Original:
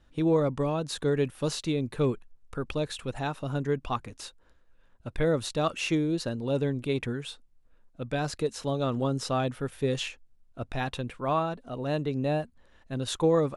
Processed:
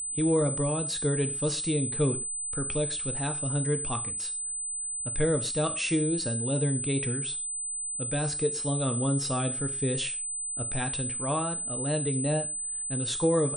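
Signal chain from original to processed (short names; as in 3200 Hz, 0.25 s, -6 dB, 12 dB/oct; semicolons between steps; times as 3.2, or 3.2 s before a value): bell 850 Hz -5 dB 1.9 oct; non-linear reverb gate 0.16 s falling, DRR 7.5 dB; wow and flutter 28 cents; whine 8100 Hz -31 dBFS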